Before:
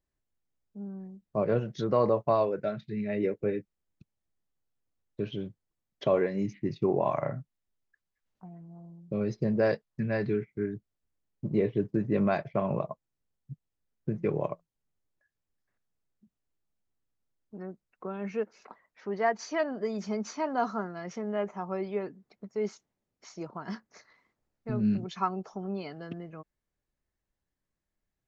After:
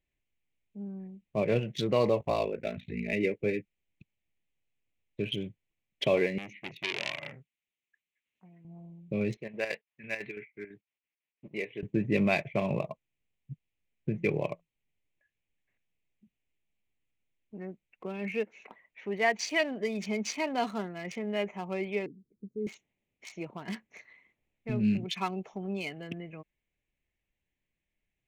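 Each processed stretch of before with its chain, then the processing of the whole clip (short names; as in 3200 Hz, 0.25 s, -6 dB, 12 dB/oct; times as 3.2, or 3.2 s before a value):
2.2–3.13 expander -59 dBFS + ring modulator 28 Hz + upward compressor, threshold -34 dBFS
6.38–8.65 HPF 440 Hz 6 dB/oct + bell 740 Hz -8 dB 1.2 oct + core saturation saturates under 2600 Hz
9.37–11.83 band-pass 1800 Hz, Q 0.65 + chopper 6 Hz, depth 60%, duty 65%
22.06–22.67 inverse Chebyshev band-stop 740–5300 Hz, stop band 50 dB + band shelf 940 Hz +9 dB 2.7 oct
whole clip: Wiener smoothing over 9 samples; resonant high shelf 1800 Hz +9 dB, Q 3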